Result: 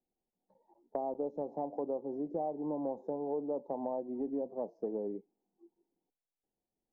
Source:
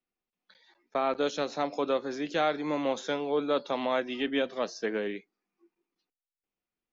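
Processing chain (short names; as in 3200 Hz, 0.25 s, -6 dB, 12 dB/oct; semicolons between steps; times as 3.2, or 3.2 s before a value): elliptic low-pass 880 Hz, stop band 40 dB; compressor 3:1, threshold -40 dBFS, peak gain reduction 12 dB; gain +4 dB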